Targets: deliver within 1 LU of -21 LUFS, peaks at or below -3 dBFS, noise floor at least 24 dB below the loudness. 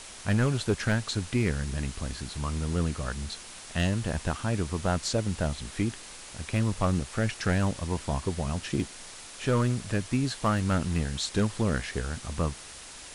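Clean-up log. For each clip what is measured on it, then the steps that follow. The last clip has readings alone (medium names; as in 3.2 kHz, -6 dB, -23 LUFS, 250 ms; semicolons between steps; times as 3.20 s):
clipped samples 0.7%; clipping level -17.5 dBFS; noise floor -45 dBFS; noise floor target -54 dBFS; loudness -29.5 LUFS; peak level -17.5 dBFS; loudness target -21.0 LUFS
-> clip repair -17.5 dBFS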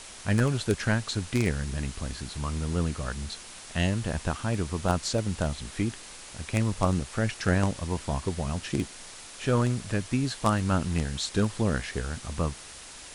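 clipped samples 0.0%; noise floor -45 dBFS; noise floor target -53 dBFS
-> noise print and reduce 8 dB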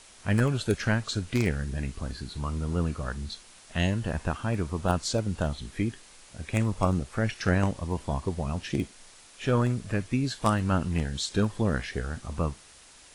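noise floor -53 dBFS; noise floor target -54 dBFS
-> noise print and reduce 6 dB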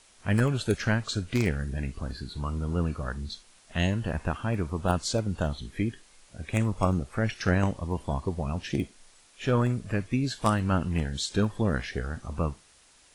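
noise floor -59 dBFS; loudness -29.5 LUFS; peak level -8.5 dBFS; loudness target -21.0 LUFS
-> trim +8.5 dB; peak limiter -3 dBFS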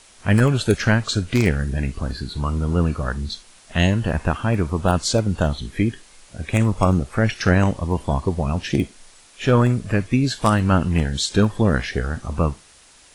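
loudness -21.0 LUFS; peak level -3.0 dBFS; noise floor -50 dBFS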